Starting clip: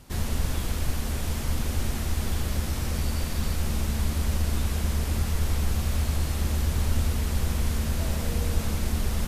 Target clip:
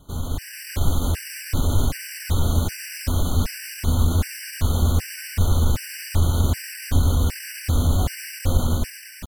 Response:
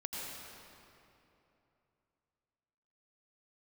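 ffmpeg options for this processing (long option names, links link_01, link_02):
-filter_complex "[0:a]dynaudnorm=framelen=150:gausssize=7:maxgain=7.5dB,asetrate=49501,aresample=44100,atempo=0.890899,asplit=2[link_01][link_02];[1:a]atrim=start_sample=2205,adelay=26[link_03];[link_02][link_03]afir=irnorm=-1:irlink=0,volume=-19.5dB[link_04];[link_01][link_04]amix=inputs=2:normalize=0,afftfilt=real='re*gt(sin(2*PI*1.3*pts/sr)*(1-2*mod(floor(b*sr/1024/1500),2)),0)':imag='im*gt(sin(2*PI*1.3*pts/sr)*(1-2*mod(floor(b*sr/1024/1500),2)),0)':win_size=1024:overlap=0.75"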